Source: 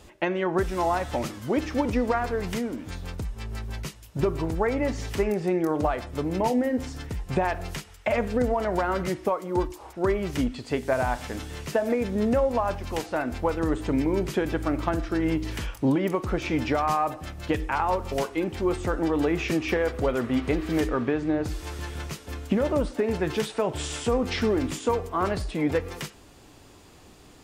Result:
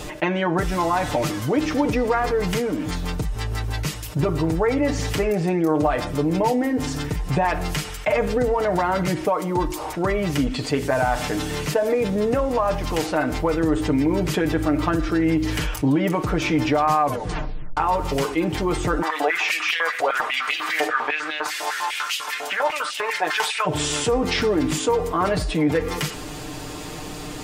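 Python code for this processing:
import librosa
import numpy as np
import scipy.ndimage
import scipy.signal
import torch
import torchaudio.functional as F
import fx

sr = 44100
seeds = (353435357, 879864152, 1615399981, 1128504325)

y = fx.filter_held_highpass(x, sr, hz=10.0, low_hz=710.0, high_hz=2900.0, at=(19.01, 23.65), fade=0.02)
y = fx.edit(y, sr, fx.tape_stop(start_s=17.0, length_s=0.77), tone=tone)
y = y + 0.68 * np.pad(y, (int(6.6 * sr / 1000.0), 0))[:len(y)]
y = fx.env_flatten(y, sr, amount_pct=50)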